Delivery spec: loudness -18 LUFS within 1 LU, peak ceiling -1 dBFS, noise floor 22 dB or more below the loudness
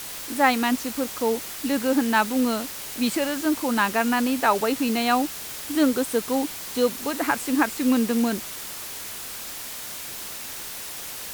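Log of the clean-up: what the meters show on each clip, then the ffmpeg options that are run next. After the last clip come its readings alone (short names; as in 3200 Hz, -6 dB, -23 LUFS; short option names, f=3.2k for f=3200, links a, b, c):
noise floor -36 dBFS; noise floor target -47 dBFS; loudness -24.5 LUFS; peak -5.5 dBFS; loudness target -18.0 LUFS
-> -af "afftdn=nr=11:nf=-36"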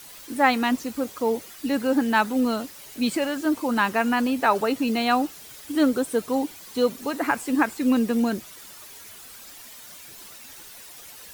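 noise floor -44 dBFS; noise floor target -46 dBFS
-> -af "afftdn=nr=6:nf=-44"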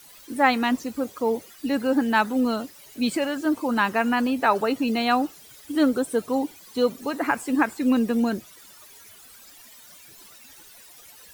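noise floor -49 dBFS; loudness -24.0 LUFS; peak -6.0 dBFS; loudness target -18.0 LUFS
-> -af "volume=6dB,alimiter=limit=-1dB:level=0:latency=1"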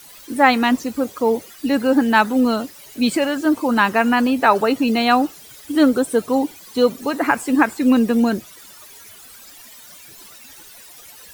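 loudness -18.0 LUFS; peak -1.0 dBFS; noise floor -43 dBFS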